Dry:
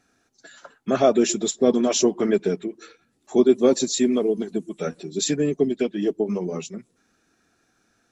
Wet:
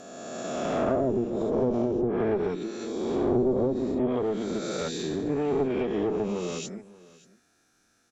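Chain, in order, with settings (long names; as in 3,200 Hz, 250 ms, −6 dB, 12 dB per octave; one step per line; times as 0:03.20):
peak hold with a rise ahead of every peak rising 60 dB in 2.09 s
asymmetric clip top −20 dBFS
high-shelf EQ 4,200 Hz +8 dB
treble cut that deepens with the level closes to 480 Hz, closed at −11.5 dBFS
on a send: single-tap delay 582 ms −21 dB
on the sum: level −6.5 dB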